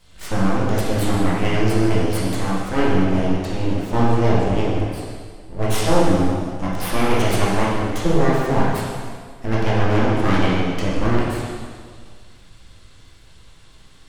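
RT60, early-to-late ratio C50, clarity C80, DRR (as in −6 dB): 1.8 s, −2.0 dB, 0.5 dB, −7.5 dB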